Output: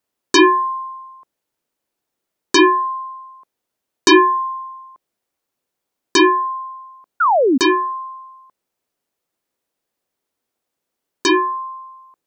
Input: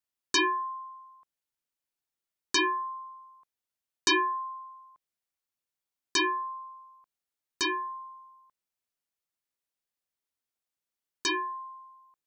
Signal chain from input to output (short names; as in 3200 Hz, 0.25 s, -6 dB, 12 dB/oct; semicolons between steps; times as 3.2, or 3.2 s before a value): bell 390 Hz +11 dB 2.8 oct; painted sound fall, 7.2–7.58, 240–1500 Hz -22 dBFS; gain +8.5 dB